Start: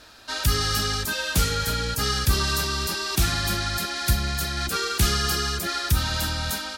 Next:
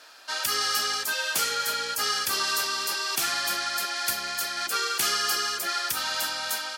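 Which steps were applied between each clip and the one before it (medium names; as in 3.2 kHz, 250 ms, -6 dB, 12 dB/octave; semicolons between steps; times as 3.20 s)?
high-pass 580 Hz 12 dB/octave; band-stop 3.8 kHz, Q 13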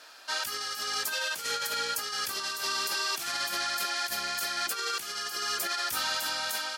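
compressor with a negative ratio -29 dBFS, ratio -0.5; trim -2.5 dB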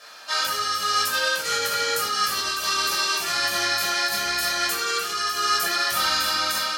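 simulated room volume 700 m³, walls furnished, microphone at 5.9 m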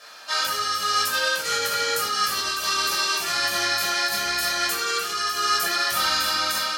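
no audible change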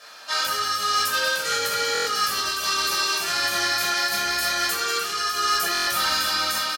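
hard clipper -16.5 dBFS, distortion -23 dB; delay 190 ms -12 dB; buffer glitch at 1.93/5.73 s, samples 1024, times 5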